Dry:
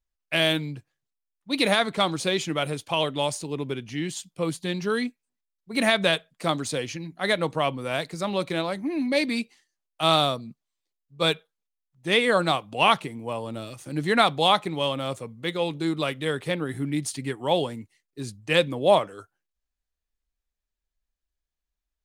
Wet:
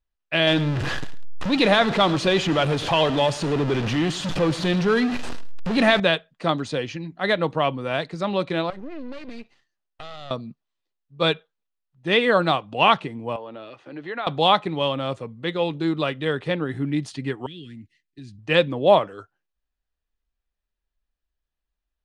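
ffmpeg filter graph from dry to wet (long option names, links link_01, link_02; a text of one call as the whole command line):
ffmpeg -i in.wav -filter_complex "[0:a]asettb=1/sr,asplit=3[link_01][link_02][link_03];[link_01]atrim=end=0.474[link_04];[link_02]atrim=start=0.47:end=6,asetpts=PTS-STARTPTS,afade=type=in:duration=0.004:curve=qsin,afade=type=out:start_time=5.526:duration=0.004:curve=qsin,aeval=exprs='val(0)+0.5*0.0562*sgn(val(0))':channel_layout=same,acompressor=mode=upward:threshold=-24dB:ratio=2.5:attack=3.2:release=140:knee=2.83:detection=peak,aecho=1:1:106|212:0.141|0.0268,atrim=end_sample=243873[link_05];[link_03]atrim=start=5.996[link_06];[link_04][link_05]acrossfade=duration=0.004:curve1=hsin:curve2=qsin[link_07];[link_07][link_06]acrossfade=duration=0.004:curve1=qsin:curve2=hsin,asettb=1/sr,asplit=3[link_08][link_09][link_10];[link_08]atrim=end=8.704[link_11];[link_09]atrim=start=8.7:end=10.31,asetpts=PTS-STARTPTS,afade=type=in:duration=0.004:curve=qsin,afade=type=out:start_time=1.606:duration=0.004:curve=qsin,acompressor=threshold=-31dB:ratio=8:attack=3.2:release=140:knee=1:detection=peak,aeval=exprs='max(val(0),0)':channel_layout=same[link_12];[link_10]atrim=start=10.306[link_13];[link_11][link_12]acrossfade=duration=0.004:curve1=hsin:curve2=qsin[link_14];[link_14][link_13]acrossfade=duration=0.004:curve1=qsin:curve2=hsin,asettb=1/sr,asplit=3[link_15][link_16][link_17];[link_15]atrim=end=13.364[link_18];[link_16]atrim=start=13.36:end=14.27,asetpts=PTS-STARTPTS,afade=type=in:duration=0.004:curve=qsin,afade=type=out:start_time=0.906:duration=0.004:curve=qsin,acrossover=split=300 3900:gain=0.141 1 0.0891[link_19][link_20][link_21];[link_19][link_20][link_21]amix=inputs=3:normalize=0,acompressor=threshold=-38dB:ratio=2:attack=3.2:release=140:knee=1:detection=peak[link_22];[link_17]atrim=start=14.266[link_23];[link_18][link_22]acrossfade=duration=0.004:curve1=hsin:curve2=qsin[link_24];[link_24][link_23]acrossfade=duration=0.004:curve1=qsin:curve2=hsin,asettb=1/sr,asplit=3[link_25][link_26][link_27];[link_25]atrim=end=17.464[link_28];[link_26]atrim=start=17.46:end=18.39,asetpts=PTS-STARTPTS,afade=type=in:duration=0.004:curve=qsin,afade=type=out:start_time=0.926:duration=0.004:curve=qsin,asuperstop=centerf=750:order=8:qfactor=0.57,acompressor=threshold=-40dB:ratio=4:attack=3.2:release=140:knee=1:detection=peak[link_29];[link_27]atrim=start=18.386[link_30];[link_28][link_29]acrossfade=duration=0.004:curve1=hsin:curve2=qsin[link_31];[link_31][link_30]acrossfade=duration=0.004:curve1=qsin:curve2=hsin,lowpass=3700,bandreject=frequency=2200:width=14,volume=3dB" out.wav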